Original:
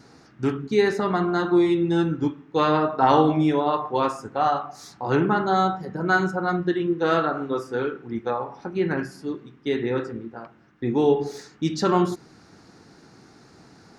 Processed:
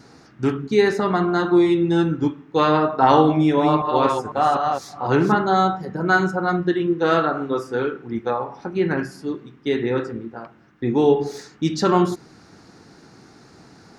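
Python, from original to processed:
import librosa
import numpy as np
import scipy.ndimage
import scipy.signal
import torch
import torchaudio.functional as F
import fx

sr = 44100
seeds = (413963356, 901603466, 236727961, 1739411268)

y = fx.reverse_delay(x, sr, ms=250, wet_db=-4.0, at=(3.32, 5.35))
y = F.gain(torch.from_numpy(y), 3.0).numpy()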